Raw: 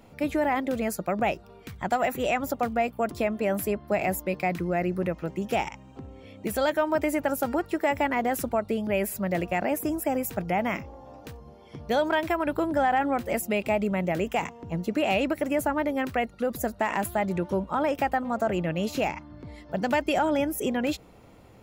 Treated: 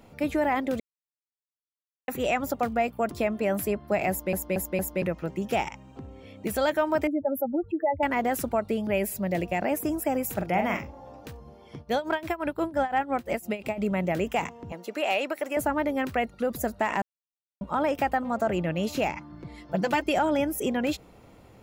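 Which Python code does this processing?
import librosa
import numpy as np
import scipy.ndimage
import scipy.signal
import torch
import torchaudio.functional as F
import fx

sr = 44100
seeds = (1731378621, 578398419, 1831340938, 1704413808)

y = fx.spec_expand(x, sr, power=3.0, at=(7.07, 8.03))
y = fx.peak_eq(y, sr, hz=1300.0, db=-7.5, octaves=0.68, at=(8.98, 9.62))
y = fx.doubler(y, sr, ms=44.0, db=-5.5, at=(10.25, 11.09))
y = fx.tremolo(y, sr, hz=5.8, depth=0.83, at=(11.77, 13.78))
y = fx.highpass(y, sr, hz=480.0, slope=12, at=(14.72, 15.57))
y = fx.comb(y, sr, ms=5.9, depth=0.65, at=(19.16, 20.04))
y = fx.edit(y, sr, fx.silence(start_s=0.8, length_s=1.28),
    fx.stutter_over(start_s=4.1, slice_s=0.23, count=4),
    fx.silence(start_s=17.02, length_s=0.59), tone=tone)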